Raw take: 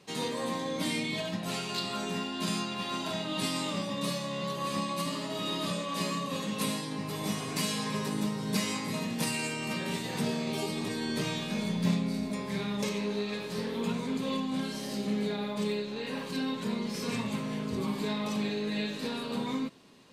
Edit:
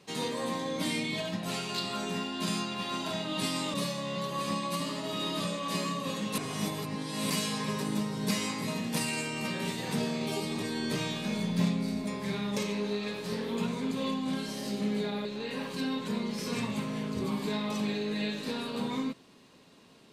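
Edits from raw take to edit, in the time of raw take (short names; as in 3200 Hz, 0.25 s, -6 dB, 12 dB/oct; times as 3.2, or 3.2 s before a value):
3.74–4 cut
6.64–7.56 reverse
15.51–15.81 cut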